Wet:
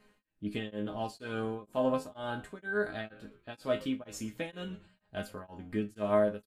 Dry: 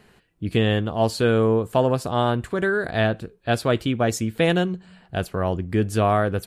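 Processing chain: chord resonator G#3 major, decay 0.22 s; frequency-shifting echo 117 ms, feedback 41%, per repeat -98 Hz, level -22.5 dB; tremolo of two beating tones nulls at 2.1 Hz; trim +5.5 dB

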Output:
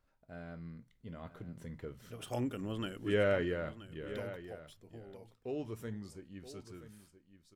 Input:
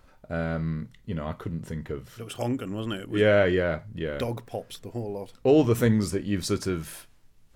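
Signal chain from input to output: Doppler pass-by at 2.62 s, 13 m/s, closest 8.2 m; delay 977 ms -13.5 dB; trim -7 dB

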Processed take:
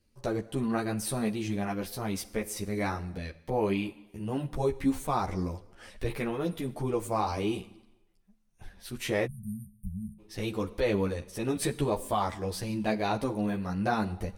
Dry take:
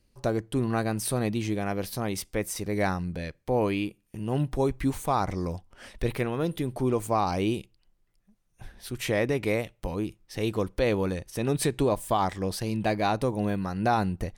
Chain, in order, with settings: Schroeder reverb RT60 0.98 s, combs from 33 ms, DRR 16.5 dB; spectral selection erased 9.26–10.19 s, 220–8700 Hz; three-phase chorus

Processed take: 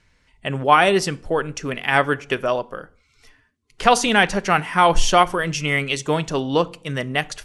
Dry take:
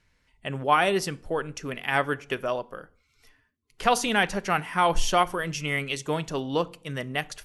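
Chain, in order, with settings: low-pass 10 kHz 24 dB/octave; trim +7 dB

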